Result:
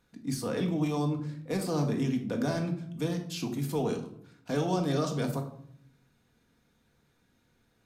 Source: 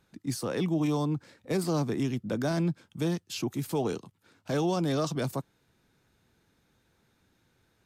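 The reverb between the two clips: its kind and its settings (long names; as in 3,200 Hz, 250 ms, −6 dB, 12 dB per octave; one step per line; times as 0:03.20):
rectangular room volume 910 cubic metres, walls furnished, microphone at 1.8 metres
level −3 dB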